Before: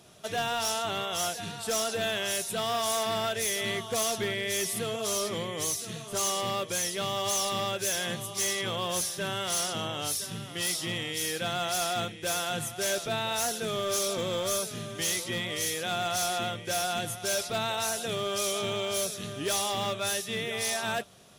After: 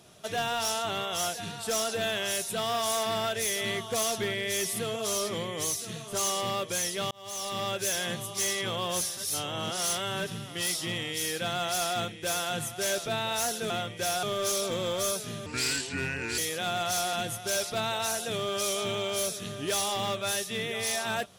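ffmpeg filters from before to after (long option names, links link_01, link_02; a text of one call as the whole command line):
ffmpeg -i in.wav -filter_complex "[0:a]asplit=9[link_01][link_02][link_03][link_04][link_05][link_06][link_07][link_08][link_09];[link_01]atrim=end=7.11,asetpts=PTS-STARTPTS,afade=type=out:start_time=7.106:duration=0.004:curve=hsin[link_10];[link_02]atrim=start=7.11:end=9.172,asetpts=PTS-STARTPTS,afade=type=in:duration=0.61[link_11];[link_03]atrim=start=9.168:end=10.282,asetpts=PTS-STARTPTS,areverse[link_12];[link_04]atrim=start=10.278:end=13.702[link_13];[link_05]atrim=start=16.378:end=16.912[link_14];[link_06]atrim=start=13.698:end=14.934[link_15];[link_07]atrim=start=14.93:end=15.63,asetpts=PTS-STARTPTS,asetrate=33516,aresample=44100,atrim=end_sample=40618,asetpts=PTS-STARTPTS[link_16];[link_08]atrim=start=15.626:end=16.382[link_17];[link_09]atrim=start=16.908[link_18];[link_10][link_11]concat=n=2:v=0:a=1[link_19];[link_19][link_12]acrossfade=duration=0.004:curve1=hsin:curve2=hsin[link_20];[link_20][link_13]acrossfade=duration=0.004:curve1=hsin:curve2=hsin[link_21];[link_21][link_14]acrossfade=duration=0.004:curve1=hsin:curve2=hsin[link_22];[link_22][link_15]acrossfade=duration=0.004:curve1=hsin:curve2=hsin[link_23];[link_23][link_16]acrossfade=duration=0.004:curve1=hsin:curve2=hsin[link_24];[link_24][link_17]acrossfade=duration=0.004:curve1=hsin:curve2=hsin[link_25];[link_25][link_18]acrossfade=duration=0.004:curve1=hsin:curve2=hsin" out.wav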